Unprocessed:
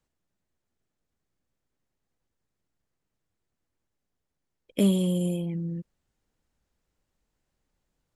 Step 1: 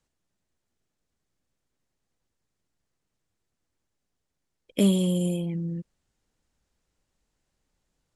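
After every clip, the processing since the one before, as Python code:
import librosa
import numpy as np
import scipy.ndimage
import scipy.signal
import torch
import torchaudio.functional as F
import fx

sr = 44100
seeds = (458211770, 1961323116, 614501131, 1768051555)

y = scipy.signal.sosfilt(scipy.signal.butter(2, 9700.0, 'lowpass', fs=sr, output='sos'), x)
y = fx.high_shelf(y, sr, hz=4200.0, db=5.5)
y = y * 10.0 ** (1.0 / 20.0)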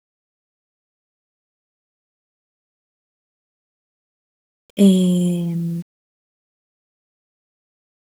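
y = fx.hpss(x, sr, part='harmonic', gain_db=6)
y = y + 0.45 * np.pad(y, (int(4.8 * sr / 1000.0), 0))[:len(y)]
y = fx.quant_dither(y, sr, seeds[0], bits=8, dither='none')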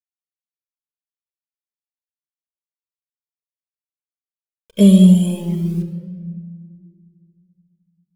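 y = fx.room_shoebox(x, sr, seeds[1], volume_m3=2900.0, walls='mixed', distance_m=1.5)
y = fx.comb_cascade(y, sr, direction='rising', hz=0.72)
y = y * 10.0 ** (4.5 / 20.0)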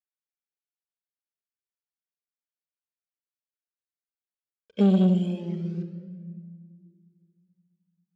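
y = fx.tube_stage(x, sr, drive_db=8.0, bias=0.4)
y = fx.cabinet(y, sr, low_hz=100.0, low_slope=12, high_hz=5100.0, hz=(140.0, 230.0, 440.0, 1000.0, 1500.0, 3500.0), db=(-9, 4, 4, -6, 6, -4))
y = y + 10.0 ** (-23.0 / 20.0) * np.pad(y, (int(219 * sr / 1000.0), 0))[:len(y)]
y = y * 10.0 ** (-6.5 / 20.0)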